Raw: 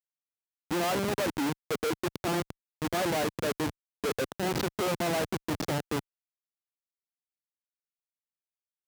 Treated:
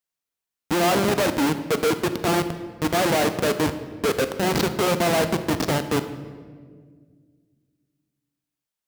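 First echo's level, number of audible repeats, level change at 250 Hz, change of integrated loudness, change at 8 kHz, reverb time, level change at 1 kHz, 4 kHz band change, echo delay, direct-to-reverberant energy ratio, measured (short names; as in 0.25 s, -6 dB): none, none, +8.5 dB, +8.5 dB, +8.5 dB, 1.8 s, +8.5 dB, +8.5 dB, none, 9.0 dB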